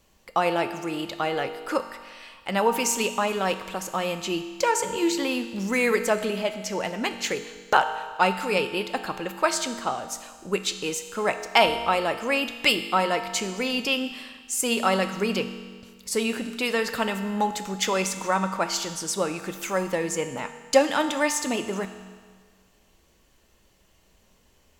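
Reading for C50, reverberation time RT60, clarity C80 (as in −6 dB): 10.0 dB, 1.7 s, 11.0 dB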